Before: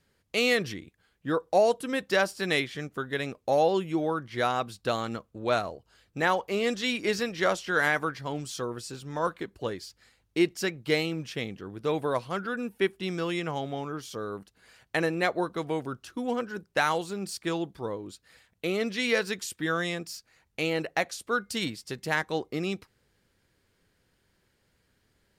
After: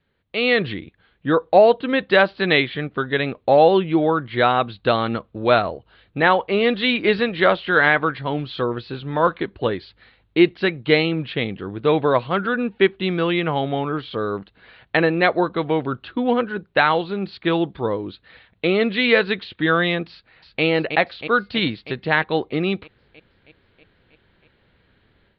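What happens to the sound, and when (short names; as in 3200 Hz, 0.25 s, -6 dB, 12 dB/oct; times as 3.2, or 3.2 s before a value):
20.1–20.63 echo throw 0.32 s, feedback 70%, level -5.5 dB
whole clip: steep low-pass 4100 Hz 72 dB/oct; AGC gain up to 11 dB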